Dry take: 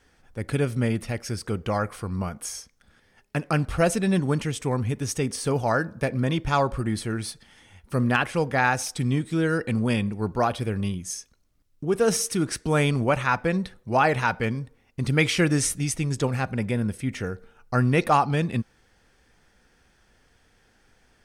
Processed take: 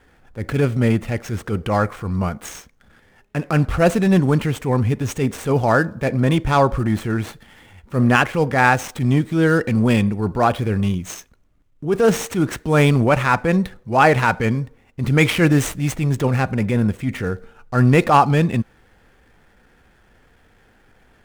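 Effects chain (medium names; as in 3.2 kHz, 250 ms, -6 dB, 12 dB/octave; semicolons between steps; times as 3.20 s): median filter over 9 samples; transient shaper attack -7 dB, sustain 0 dB; trim +8.5 dB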